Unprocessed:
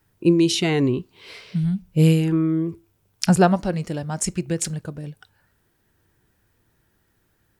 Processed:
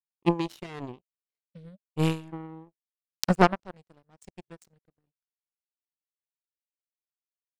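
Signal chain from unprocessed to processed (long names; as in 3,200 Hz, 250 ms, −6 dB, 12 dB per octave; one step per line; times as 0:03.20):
high-shelf EQ 9,300 Hz −11.5 dB
power curve on the samples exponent 3
level +3 dB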